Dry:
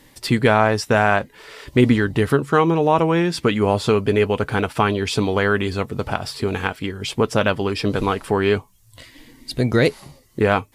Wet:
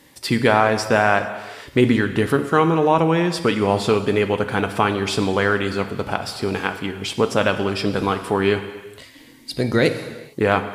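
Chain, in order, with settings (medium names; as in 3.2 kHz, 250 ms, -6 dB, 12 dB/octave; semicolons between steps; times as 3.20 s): high-pass 130 Hz 6 dB/octave; gated-style reverb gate 480 ms falling, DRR 8 dB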